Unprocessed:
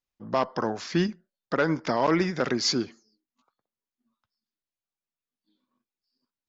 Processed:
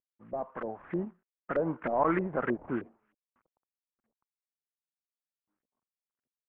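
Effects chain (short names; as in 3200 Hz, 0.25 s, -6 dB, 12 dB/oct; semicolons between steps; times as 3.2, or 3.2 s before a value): CVSD 16 kbps; Doppler pass-by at 2.45, 7 m/s, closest 7.2 m; LFO low-pass saw up 3.2 Hz 490–1900 Hz; gain -5 dB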